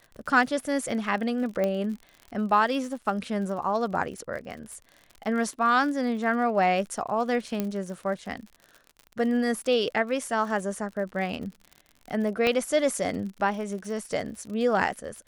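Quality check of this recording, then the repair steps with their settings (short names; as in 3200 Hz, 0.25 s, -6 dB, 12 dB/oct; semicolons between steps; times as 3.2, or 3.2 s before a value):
crackle 55/s -36 dBFS
1.64 pop -15 dBFS
7.6 pop -14 dBFS
12.47 pop -12 dBFS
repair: de-click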